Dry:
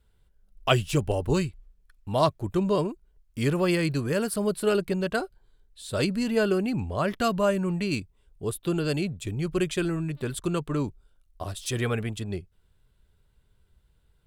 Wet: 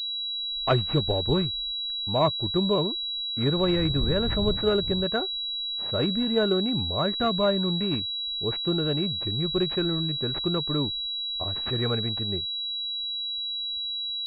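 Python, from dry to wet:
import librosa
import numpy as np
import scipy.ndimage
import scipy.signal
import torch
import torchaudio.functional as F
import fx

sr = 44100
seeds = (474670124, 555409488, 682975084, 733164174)

y = fx.dmg_wind(x, sr, seeds[0], corner_hz=100.0, level_db=-28.0, at=(3.55, 5.03), fade=0.02)
y = fx.pwm(y, sr, carrier_hz=3900.0)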